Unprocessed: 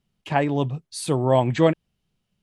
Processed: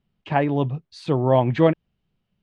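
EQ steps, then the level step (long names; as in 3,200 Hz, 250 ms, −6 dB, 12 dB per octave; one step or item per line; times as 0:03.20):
high-frequency loss of the air 210 metres
+1.5 dB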